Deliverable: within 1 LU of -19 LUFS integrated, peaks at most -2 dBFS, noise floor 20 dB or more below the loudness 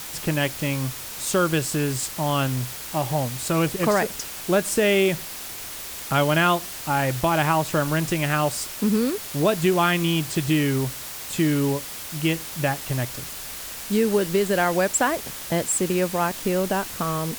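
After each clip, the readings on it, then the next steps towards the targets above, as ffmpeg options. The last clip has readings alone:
noise floor -35 dBFS; noise floor target -44 dBFS; loudness -23.5 LUFS; peak level -7.5 dBFS; loudness target -19.0 LUFS
-> -af "afftdn=nr=9:nf=-35"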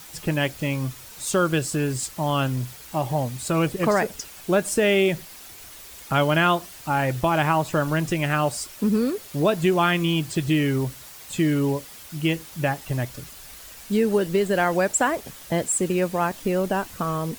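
noise floor -43 dBFS; noise floor target -44 dBFS
-> -af "afftdn=nr=6:nf=-43"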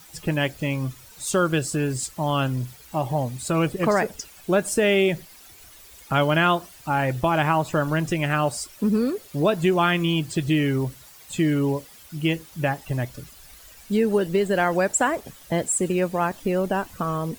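noise floor -48 dBFS; loudness -23.5 LUFS; peak level -8.0 dBFS; loudness target -19.0 LUFS
-> -af "volume=1.68"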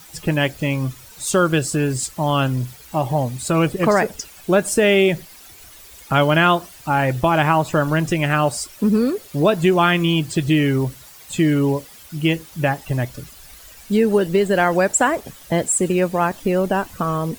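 loudness -19.0 LUFS; peak level -3.5 dBFS; noise floor -43 dBFS

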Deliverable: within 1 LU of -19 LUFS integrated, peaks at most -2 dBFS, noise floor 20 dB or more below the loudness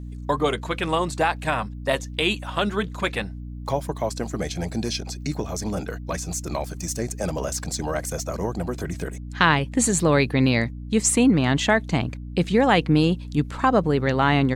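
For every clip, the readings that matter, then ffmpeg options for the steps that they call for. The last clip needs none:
hum 60 Hz; highest harmonic 300 Hz; hum level -32 dBFS; loudness -23.5 LUFS; peak level -2.5 dBFS; loudness target -19.0 LUFS
-> -af "bandreject=f=60:t=h:w=6,bandreject=f=120:t=h:w=6,bandreject=f=180:t=h:w=6,bandreject=f=240:t=h:w=6,bandreject=f=300:t=h:w=6"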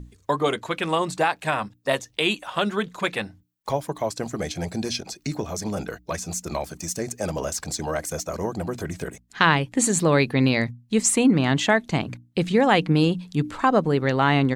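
hum not found; loudness -24.0 LUFS; peak level -2.0 dBFS; loudness target -19.0 LUFS
-> -af "volume=1.78,alimiter=limit=0.794:level=0:latency=1"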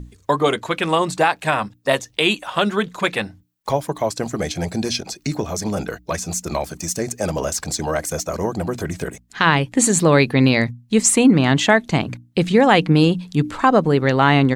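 loudness -19.0 LUFS; peak level -2.0 dBFS; noise floor -56 dBFS

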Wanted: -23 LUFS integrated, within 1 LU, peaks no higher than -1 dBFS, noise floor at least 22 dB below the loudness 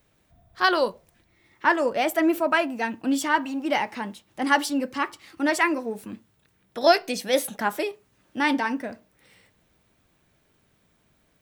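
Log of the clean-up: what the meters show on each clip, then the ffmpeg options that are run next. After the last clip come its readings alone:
loudness -24.5 LUFS; peak level -4.5 dBFS; loudness target -23.0 LUFS
-> -af "volume=1.19"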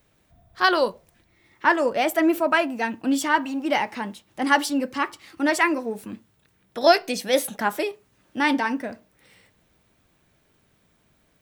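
loudness -23.0 LUFS; peak level -3.0 dBFS; noise floor -65 dBFS

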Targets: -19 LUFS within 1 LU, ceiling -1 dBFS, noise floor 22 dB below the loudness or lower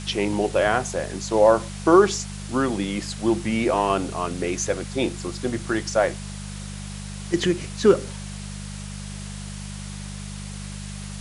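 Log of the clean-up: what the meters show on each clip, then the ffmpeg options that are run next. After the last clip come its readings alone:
hum 50 Hz; highest harmonic 200 Hz; hum level -33 dBFS; noise floor -34 dBFS; noise floor target -45 dBFS; loudness -22.5 LUFS; peak level -4.0 dBFS; loudness target -19.0 LUFS
-> -af "bandreject=f=50:t=h:w=4,bandreject=f=100:t=h:w=4,bandreject=f=150:t=h:w=4,bandreject=f=200:t=h:w=4"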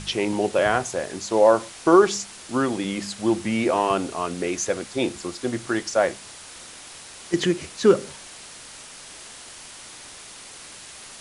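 hum not found; noise floor -43 dBFS; noise floor target -45 dBFS
-> -af "afftdn=nr=6:nf=-43"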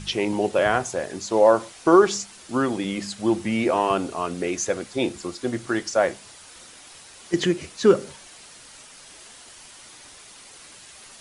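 noise floor -47 dBFS; loudness -23.0 LUFS; peak level -4.0 dBFS; loudness target -19.0 LUFS
-> -af "volume=1.58,alimiter=limit=0.891:level=0:latency=1"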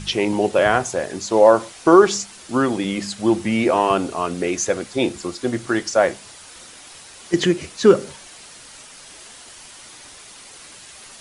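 loudness -19.0 LUFS; peak level -1.0 dBFS; noise floor -43 dBFS

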